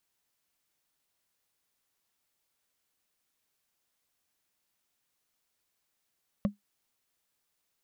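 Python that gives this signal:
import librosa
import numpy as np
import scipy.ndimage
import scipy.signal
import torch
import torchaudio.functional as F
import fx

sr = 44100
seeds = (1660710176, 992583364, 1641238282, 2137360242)

y = fx.strike_wood(sr, length_s=0.45, level_db=-19.5, body='bar', hz=204.0, decay_s=0.14, tilt_db=6.5, modes=5)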